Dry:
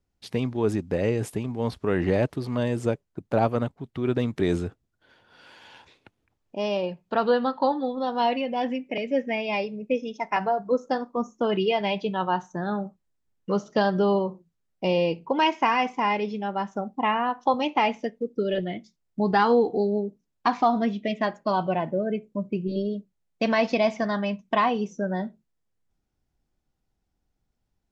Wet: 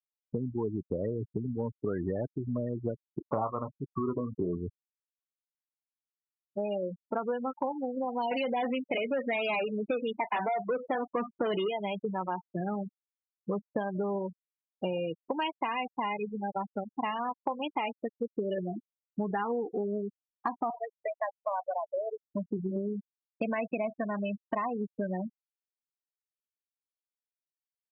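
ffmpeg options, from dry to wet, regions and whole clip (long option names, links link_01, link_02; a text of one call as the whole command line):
ffmpeg -i in.wav -filter_complex "[0:a]asettb=1/sr,asplit=3[link_01][link_02][link_03];[link_01]atrim=end=3.074[link_04];[link_02]atrim=start=3.07:end=4.57,asetpts=PTS-STARTPTS,afade=type=in:duration=0.004:curve=qsin,afade=type=out:start_time=1.496:duration=0.004:curve=qsin,lowpass=frequency=1100:width_type=q:width=7,asplit=2[link_05][link_06];[link_06]adelay=28,volume=-8.5dB[link_07];[link_05][link_07]amix=inputs=2:normalize=0,atrim=end_sample=66150[link_08];[link_03]atrim=start=4.566[link_09];[link_04][link_08]acrossfade=duration=0.004:curve1=hsin:curve2=qsin[link_10];[link_10][link_09]acrossfade=duration=0.004:curve1=qsin:curve2=hsin,asettb=1/sr,asplit=3[link_11][link_12][link_13];[link_11]atrim=end=8.314[link_14];[link_12]atrim=start=8.31:end=11.68,asetpts=PTS-STARTPTS,afade=type=in:duration=0.004:curve=qsin,afade=type=out:start_time=3.366:duration=0.004:curve=qsin,asplit=2[link_15][link_16];[link_16]highpass=frequency=720:poles=1,volume=24dB,asoftclip=type=tanh:threshold=-11.5dB[link_17];[link_15][link_17]amix=inputs=2:normalize=0,lowpass=frequency=1300:poles=1,volume=-6dB,highshelf=frequency=2300:gain=8.5[link_18];[link_13]atrim=start=11.676[link_19];[link_14][link_18]acrossfade=duration=0.004:curve1=hsin:curve2=qsin[link_20];[link_20][link_19]acrossfade=duration=0.004:curve1=qsin:curve2=hsin,asettb=1/sr,asplit=3[link_21][link_22][link_23];[link_21]atrim=end=14.974[link_24];[link_22]atrim=start=14.97:end=18.21,asetpts=PTS-STARTPTS,afade=type=in:duration=0.004:curve=qsin,afade=type=out:start_time=3.236:duration=0.004:curve=qsin,aeval=exprs='sgn(val(0))*max(abs(val(0))-0.00944,0)':channel_layout=same,aemphasis=mode=production:type=50fm[link_25];[link_23]atrim=start=18.206[link_26];[link_24][link_25]acrossfade=duration=0.004:curve1=hsin:curve2=qsin[link_27];[link_27][link_26]acrossfade=duration=0.004:curve1=qsin:curve2=hsin,asettb=1/sr,asplit=3[link_28][link_29][link_30];[link_28]atrim=end=20.704[link_31];[link_29]atrim=start=20.7:end=22.31,asetpts=PTS-STARTPTS,afade=type=in:duration=0.004:curve=qsin,afade=type=out:start_time=1.606:duration=0.004:curve=qsin,highpass=frequency=520:width=0.5412,highpass=frequency=520:width=1.3066,acrossover=split=3700[link_32][link_33];[link_33]acompressor=threshold=-51dB:ratio=4:attack=1:release=60[link_34];[link_32][link_34]amix=inputs=2:normalize=0,highshelf=frequency=3100:gain=-3.5[link_35];[link_30]atrim=start=22.306[link_36];[link_31][link_35]acrossfade=duration=0.004:curve1=hsin:curve2=qsin[link_37];[link_37][link_36]acrossfade=duration=0.004:curve1=qsin:curve2=hsin,highpass=58,afftfilt=real='re*gte(hypot(re,im),0.1)':imag='im*gte(hypot(re,im),0.1)':win_size=1024:overlap=0.75,acompressor=threshold=-29dB:ratio=6" out.wav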